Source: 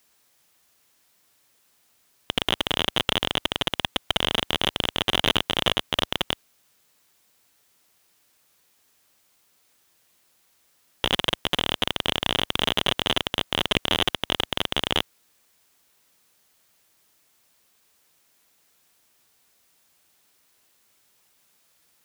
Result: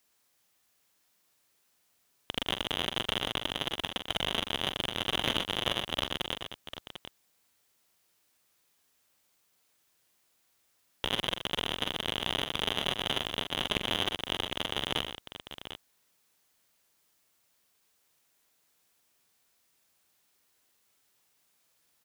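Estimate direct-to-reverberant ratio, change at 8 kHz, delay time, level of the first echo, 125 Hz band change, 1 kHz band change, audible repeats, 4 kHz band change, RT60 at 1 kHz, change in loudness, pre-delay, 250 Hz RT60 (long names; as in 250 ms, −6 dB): no reverb audible, −7.5 dB, 44 ms, −8.5 dB, −7.5 dB, −7.5 dB, 3, −7.5 dB, no reverb audible, −7.5 dB, no reverb audible, no reverb audible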